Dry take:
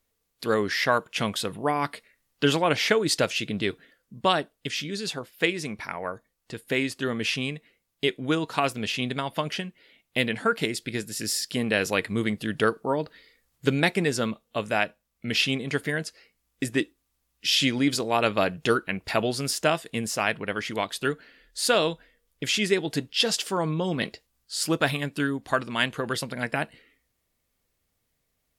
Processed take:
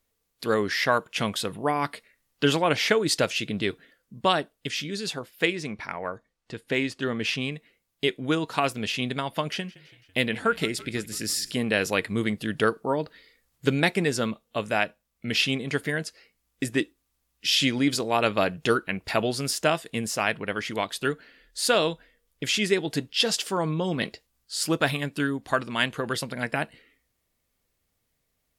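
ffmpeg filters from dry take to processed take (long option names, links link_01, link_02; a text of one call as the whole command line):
ffmpeg -i in.wav -filter_complex "[0:a]asettb=1/sr,asplit=3[link_01][link_02][link_03];[link_01]atrim=end=5.554[link_04];[link_02]atrim=start=5.55:end=7.52,asetpts=PTS-STARTPTS,afade=type=in:duration=0.004:curve=qsin,afade=type=out:start_time=1.966:duration=0.004:curve=qsin,adynamicsmooth=sensitivity=2:basefreq=7400[link_05];[link_03]atrim=start=7.516[link_06];[link_04][link_05]acrossfade=duration=0.004:curve1=hsin:curve2=qsin[link_07];[link_07][link_06]acrossfade=duration=0.004:curve1=qsin:curve2=hsin,asettb=1/sr,asplit=3[link_08][link_09][link_10];[link_08]atrim=end=9.504[link_11];[link_09]atrim=start=9.5:end=11.51,asetpts=PTS-STARTPTS,afade=type=in:duration=0.004:curve=qsin,afade=type=out:start_time=2.006:duration=0.004:curve=qsin,asplit=6[link_12][link_13][link_14][link_15][link_16][link_17];[link_13]adelay=166,afreqshift=-31,volume=-20.5dB[link_18];[link_14]adelay=332,afreqshift=-62,volume=-24.8dB[link_19];[link_15]adelay=498,afreqshift=-93,volume=-29.1dB[link_20];[link_16]adelay=664,afreqshift=-124,volume=-33.4dB[link_21];[link_17]adelay=830,afreqshift=-155,volume=-37.7dB[link_22];[link_12][link_18][link_19][link_20][link_21][link_22]amix=inputs=6:normalize=0,atrim=end_sample=88641[link_23];[link_10]atrim=start=11.506[link_24];[link_11][link_23]acrossfade=duration=0.004:curve1=hsin:curve2=qsin[link_25];[link_25][link_24]acrossfade=duration=0.004:curve1=qsin:curve2=hsin" out.wav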